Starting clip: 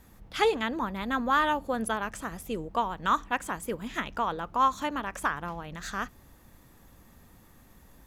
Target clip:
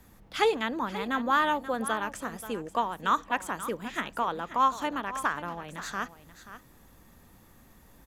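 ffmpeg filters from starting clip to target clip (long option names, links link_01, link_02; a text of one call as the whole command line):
ffmpeg -i in.wav -filter_complex "[0:a]acrossover=split=160|1300|7200[link_01][link_02][link_03][link_04];[link_01]acompressor=threshold=-55dB:ratio=5[link_05];[link_05][link_02][link_03][link_04]amix=inputs=4:normalize=0,aecho=1:1:532:0.211" out.wav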